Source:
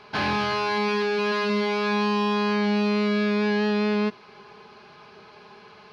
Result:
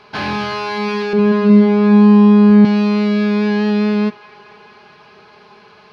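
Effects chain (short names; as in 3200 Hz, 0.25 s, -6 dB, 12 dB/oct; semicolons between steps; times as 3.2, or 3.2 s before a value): 1.13–2.65 tilt -4 dB/oct; band-limited delay 0.217 s, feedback 82%, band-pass 1500 Hz, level -20 dB; dynamic EQ 190 Hz, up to +7 dB, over -30 dBFS, Q 0.87; gain +3 dB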